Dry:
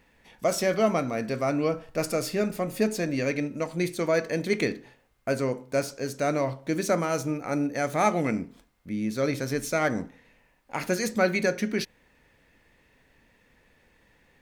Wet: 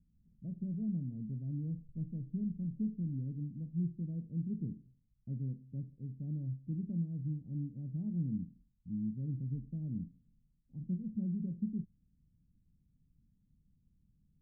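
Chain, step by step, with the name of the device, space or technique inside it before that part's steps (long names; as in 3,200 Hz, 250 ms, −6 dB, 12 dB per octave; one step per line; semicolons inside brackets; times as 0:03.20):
the neighbour's flat through the wall (low-pass filter 190 Hz 24 dB per octave; parametric band 170 Hz +4 dB)
level −4 dB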